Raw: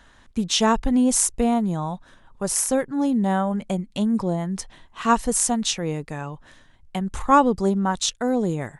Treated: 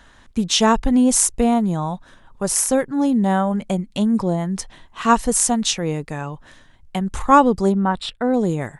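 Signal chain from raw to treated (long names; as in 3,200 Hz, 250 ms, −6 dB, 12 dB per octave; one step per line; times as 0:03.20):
0:07.72–0:08.34: moving average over 7 samples
level +3.5 dB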